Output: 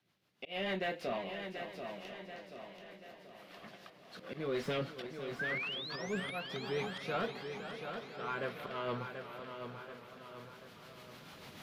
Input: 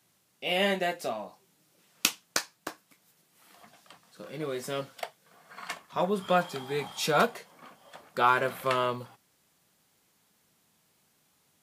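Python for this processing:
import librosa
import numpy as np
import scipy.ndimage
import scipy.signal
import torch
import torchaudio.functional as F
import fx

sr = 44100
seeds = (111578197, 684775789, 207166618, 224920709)

p1 = fx.recorder_agc(x, sr, target_db=-11.0, rise_db_per_s=8.5, max_gain_db=30)
p2 = F.preemphasis(torch.from_numpy(p1), 0.8).numpy()
p3 = fx.auto_swell(p2, sr, attack_ms=295.0)
p4 = fx.rotary(p3, sr, hz=6.7)
p5 = 10.0 ** (-37.5 / 20.0) * np.tanh(p4 / 10.0 ** (-37.5 / 20.0))
p6 = fx.spec_paint(p5, sr, seeds[0], shape='rise', start_s=5.39, length_s=1.01, low_hz=1500.0, high_hz=12000.0, level_db=-44.0)
p7 = fx.air_absorb(p6, sr, metres=330.0)
p8 = p7 + fx.echo_feedback(p7, sr, ms=733, feedback_pct=48, wet_db=-7.5, dry=0)
p9 = fx.echo_warbled(p8, sr, ms=504, feedback_pct=65, rate_hz=2.8, cents=96, wet_db=-12)
y = p9 * librosa.db_to_amplitude(9.5)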